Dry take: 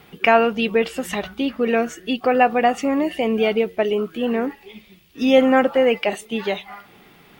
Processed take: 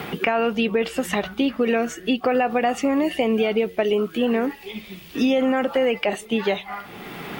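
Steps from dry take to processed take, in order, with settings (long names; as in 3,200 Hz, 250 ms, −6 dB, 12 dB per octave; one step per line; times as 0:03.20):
brickwall limiter −12 dBFS, peak gain reduction 9.5 dB
multiband upward and downward compressor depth 70%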